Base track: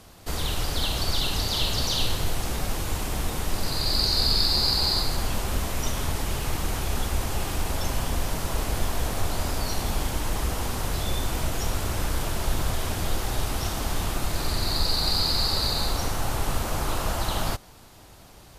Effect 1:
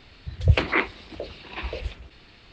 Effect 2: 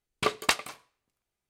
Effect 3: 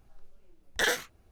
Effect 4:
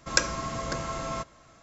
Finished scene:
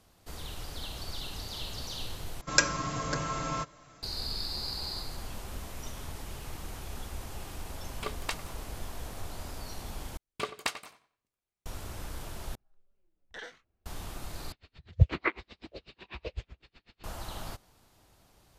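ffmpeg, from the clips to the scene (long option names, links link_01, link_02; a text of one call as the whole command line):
ffmpeg -i bed.wav -i cue0.wav -i cue1.wav -i cue2.wav -i cue3.wav -filter_complex "[2:a]asplit=2[link_01][link_02];[0:a]volume=-13.5dB[link_03];[4:a]aecho=1:1:6.8:0.5[link_04];[link_02]asplit=2[link_05][link_06];[link_06]adelay=91,lowpass=frequency=4200:poles=1,volume=-13.5dB,asplit=2[link_07][link_08];[link_08]adelay=91,lowpass=frequency=4200:poles=1,volume=0.29,asplit=2[link_09][link_10];[link_10]adelay=91,lowpass=frequency=4200:poles=1,volume=0.29[link_11];[link_05][link_07][link_09][link_11]amix=inputs=4:normalize=0[link_12];[3:a]lowpass=4300[link_13];[1:a]aeval=exprs='val(0)*pow(10,-35*(0.5-0.5*cos(2*PI*8*n/s))/20)':channel_layout=same[link_14];[link_03]asplit=5[link_15][link_16][link_17][link_18][link_19];[link_15]atrim=end=2.414[link_20];[link_04]atrim=end=1.62,asetpts=PTS-STARTPTS,volume=-1dB[link_21];[link_16]atrim=start=4.026:end=10.174[link_22];[link_12]atrim=end=1.49,asetpts=PTS-STARTPTS,volume=-8dB[link_23];[link_17]atrim=start=11.656:end=12.554[link_24];[link_13]atrim=end=1.31,asetpts=PTS-STARTPTS,volume=-17dB[link_25];[link_18]atrim=start=13.856:end=14.524[link_26];[link_14]atrim=end=2.52,asetpts=PTS-STARTPTS,volume=-2.5dB[link_27];[link_19]atrim=start=17.036[link_28];[link_01]atrim=end=1.49,asetpts=PTS-STARTPTS,volume=-11dB,afade=type=in:duration=0.004:curve=hsin,afade=type=out:start_time=1.486:duration=0.004:curve=hsin,adelay=7800[link_29];[link_20][link_21]acrossfade=duration=0.004:curve1=hsin:curve2=hsin[link_30];[link_30][link_22]acrossfade=duration=0.004:curve1=hsin:curve2=hsin[link_31];[link_31][link_23]acrossfade=duration=0.004:curve1=hsin:curve2=hsin[link_32];[link_32][link_24]acrossfade=duration=0.004:curve1=hsin:curve2=hsin[link_33];[link_33][link_25]acrossfade=duration=0.004:curve1=hsin:curve2=hsin[link_34];[link_34][link_26]acrossfade=duration=0.004:curve1=hsin:curve2=hsin[link_35];[link_35][link_27]acrossfade=duration=0.004:curve1=hsin:curve2=hsin[link_36];[link_36][link_28]acrossfade=duration=0.004:curve1=hsin:curve2=hsin[link_37];[link_37][link_29]amix=inputs=2:normalize=0" out.wav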